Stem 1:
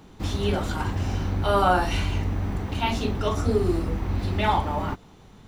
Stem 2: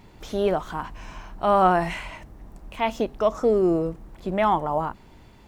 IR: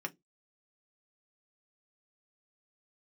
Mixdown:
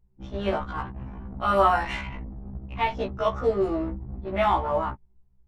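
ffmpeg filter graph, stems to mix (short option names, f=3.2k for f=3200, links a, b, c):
-filter_complex "[0:a]highshelf=f=4k:g=-6,volume=-3dB[a];[1:a]volume=-0.5dB,asplit=2[b][c];[c]volume=-5dB[d];[2:a]atrim=start_sample=2205[e];[d][e]afir=irnorm=-1:irlink=0[f];[a][b][f]amix=inputs=3:normalize=0,anlmdn=63.1,equalizer=f=310:t=o:w=1.2:g=-6,afftfilt=real='re*1.73*eq(mod(b,3),0)':imag='im*1.73*eq(mod(b,3),0)':win_size=2048:overlap=0.75"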